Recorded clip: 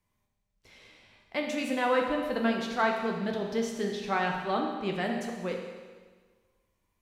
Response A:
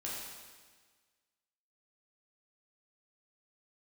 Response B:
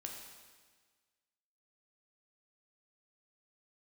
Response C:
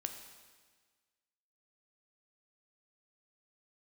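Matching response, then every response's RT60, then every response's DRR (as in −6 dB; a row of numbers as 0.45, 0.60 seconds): B; 1.5, 1.5, 1.5 seconds; −6.0, 0.5, 5.5 decibels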